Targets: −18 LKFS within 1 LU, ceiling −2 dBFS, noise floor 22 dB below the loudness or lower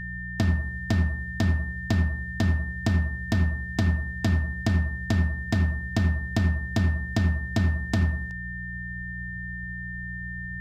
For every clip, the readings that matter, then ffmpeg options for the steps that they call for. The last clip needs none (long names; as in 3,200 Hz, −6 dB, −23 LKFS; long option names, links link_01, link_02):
mains hum 60 Hz; hum harmonics up to 180 Hz; level of the hum −34 dBFS; interfering tone 1,800 Hz; level of the tone −35 dBFS; integrated loudness −27.0 LKFS; sample peak −11.0 dBFS; target loudness −18.0 LKFS
→ -af "bandreject=frequency=60:width_type=h:width=4,bandreject=frequency=120:width_type=h:width=4,bandreject=frequency=180:width_type=h:width=4"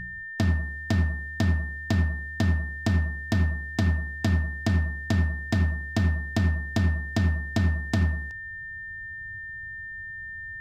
mains hum none found; interfering tone 1,800 Hz; level of the tone −35 dBFS
→ -af "bandreject=frequency=1800:width=30"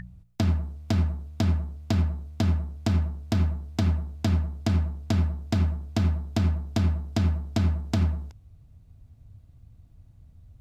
interfering tone none found; integrated loudness −27.0 LKFS; sample peak −12.0 dBFS; target loudness −18.0 LKFS
→ -af "volume=9dB"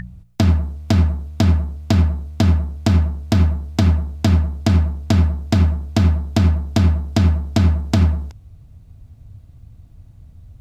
integrated loudness −18.0 LKFS; sample peak −3.0 dBFS; background noise floor −45 dBFS